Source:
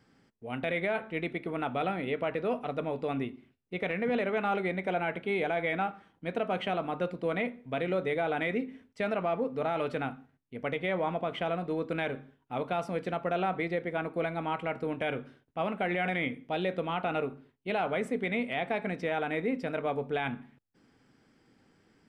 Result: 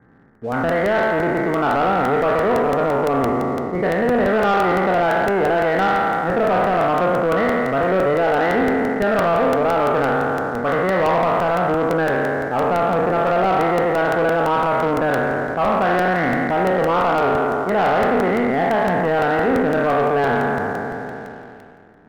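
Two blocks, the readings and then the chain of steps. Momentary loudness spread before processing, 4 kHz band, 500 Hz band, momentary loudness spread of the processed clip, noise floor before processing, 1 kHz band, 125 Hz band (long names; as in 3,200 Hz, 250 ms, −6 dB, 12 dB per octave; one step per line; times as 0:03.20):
6 LU, +9.0 dB, +14.5 dB, 4 LU, −70 dBFS, +16.5 dB, +12.5 dB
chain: peak hold with a decay on every bin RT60 2.83 s
Butterworth low-pass 1,900 Hz 72 dB per octave
dynamic equaliser 1,100 Hz, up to +5 dB, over −46 dBFS, Q 2.5
in parallel at −2.5 dB: downward compressor, threshold −40 dBFS, peak gain reduction 17.5 dB
on the sum: leveller curve on the samples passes 1
soft clipping −17.5 dBFS, distortion −18 dB
regular buffer underruns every 0.17 s, samples 64, repeat, from 0:00.35
level +6.5 dB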